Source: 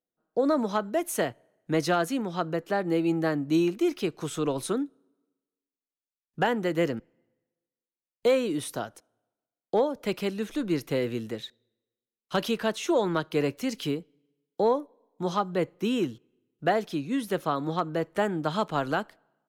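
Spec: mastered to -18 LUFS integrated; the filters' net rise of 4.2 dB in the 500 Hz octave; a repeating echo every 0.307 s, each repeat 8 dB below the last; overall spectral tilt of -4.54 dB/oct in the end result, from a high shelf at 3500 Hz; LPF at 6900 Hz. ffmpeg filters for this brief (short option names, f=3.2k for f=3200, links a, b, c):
-af "lowpass=6.9k,equalizer=f=500:t=o:g=5,highshelf=f=3.5k:g=5.5,aecho=1:1:307|614|921|1228|1535:0.398|0.159|0.0637|0.0255|0.0102,volume=7dB"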